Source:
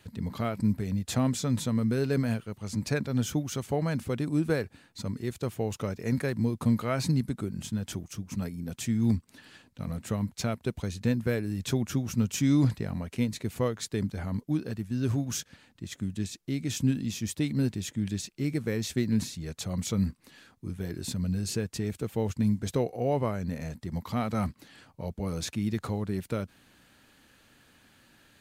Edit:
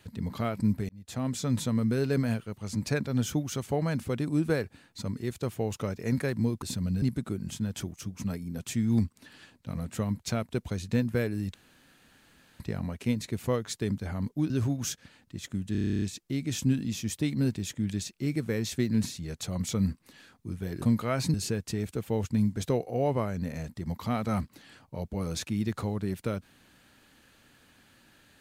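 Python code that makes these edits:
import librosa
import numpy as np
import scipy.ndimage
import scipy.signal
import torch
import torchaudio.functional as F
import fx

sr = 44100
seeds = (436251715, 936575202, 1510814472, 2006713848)

y = fx.edit(x, sr, fx.fade_in_span(start_s=0.89, length_s=0.63),
    fx.swap(start_s=6.62, length_s=0.52, other_s=21.0, other_length_s=0.4),
    fx.room_tone_fill(start_s=11.66, length_s=1.06),
    fx.cut(start_s=14.62, length_s=0.36),
    fx.stutter(start_s=16.2, slice_s=0.03, count=11), tone=tone)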